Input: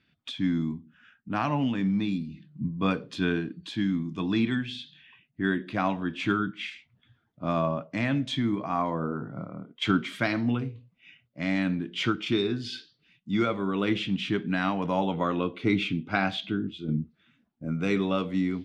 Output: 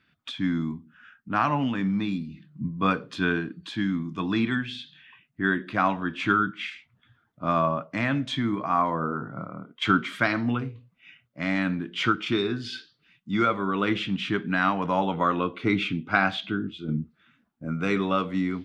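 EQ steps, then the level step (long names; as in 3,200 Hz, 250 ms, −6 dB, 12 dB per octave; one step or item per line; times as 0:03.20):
parametric band 1,300 Hz +8 dB 1.1 octaves
0.0 dB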